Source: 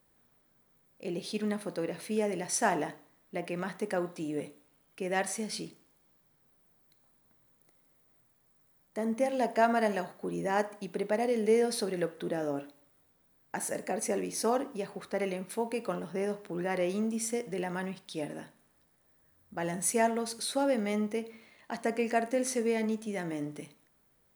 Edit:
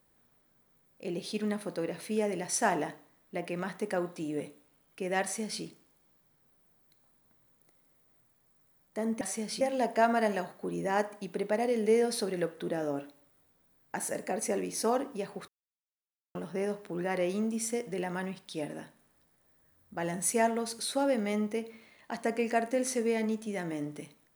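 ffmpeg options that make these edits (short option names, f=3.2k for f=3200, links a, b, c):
-filter_complex "[0:a]asplit=5[a][b][c][d][e];[a]atrim=end=9.212[f];[b]atrim=start=5.218:end=5.622[g];[c]atrim=start=9.208:end=15.08,asetpts=PTS-STARTPTS,afade=t=out:st=5.868:d=0.004:c=hsin[h];[d]atrim=start=15.08:end=15.95,asetpts=PTS-STARTPTS,volume=0[i];[e]atrim=start=15.95,asetpts=PTS-STARTPTS,afade=t=in:d=0.004:c=hsin[j];[f][g]acrossfade=d=0.004:c1=hsin:c2=hsin[k];[h][i][j]concat=n=3:v=0:a=1[l];[k][l]acrossfade=d=0.004:c1=hsin:c2=hsin"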